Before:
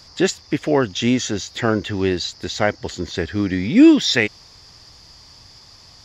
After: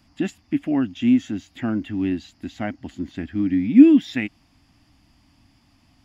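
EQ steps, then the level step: EQ curve 150 Hz 0 dB, 280 Hz +12 dB, 440 Hz -15 dB, 700 Hz -1 dB, 1000 Hz -6 dB, 1900 Hz -4 dB, 2800 Hz 0 dB, 4200 Hz -15 dB, 6000 Hz -15 dB, 9900 Hz -2 dB; -7.5 dB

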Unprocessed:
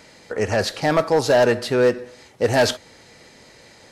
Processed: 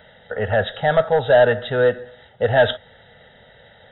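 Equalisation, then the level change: brick-wall FIR low-pass 3900 Hz; fixed phaser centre 1600 Hz, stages 8; +3.5 dB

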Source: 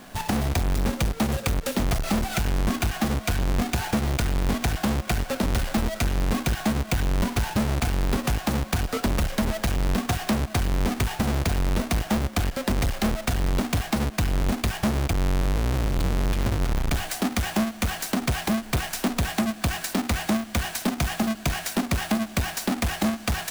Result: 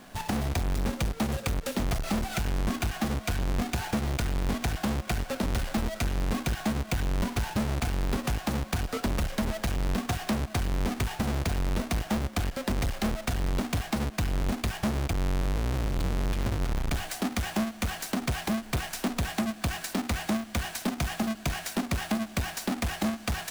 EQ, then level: high shelf 12000 Hz -3 dB; -4.5 dB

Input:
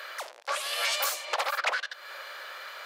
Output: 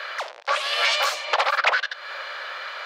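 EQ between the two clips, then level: three-band isolator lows -13 dB, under 350 Hz, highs -21 dB, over 5600 Hz; +8.5 dB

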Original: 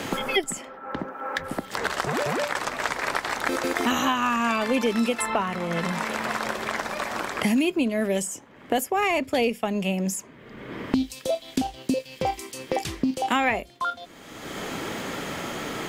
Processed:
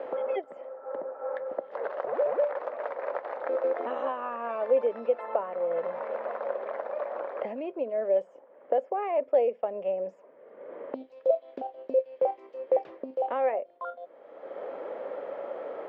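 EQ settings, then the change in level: resonant high-pass 540 Hz, resonance Q 6.4; Bessel low-pass 1000 Hz, order 2; air absorption 110 m; -8.5 dB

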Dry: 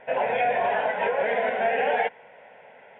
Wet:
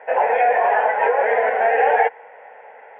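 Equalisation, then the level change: air absorption 95 m; speaker cabinet 420–2700 Hz, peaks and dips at 460 Hz +8 dB, 820 Hz +9 dB, 1200 Hz +6 dB, 1800 Hz +6 dB; +2.5 dB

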